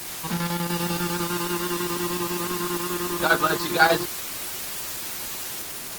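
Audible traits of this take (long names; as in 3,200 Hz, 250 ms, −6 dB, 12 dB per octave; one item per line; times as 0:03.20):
chopped level 10 Hz, depth 60%, duty 70%
a quantiser's noise floor 6 bits, dither triangular
Opus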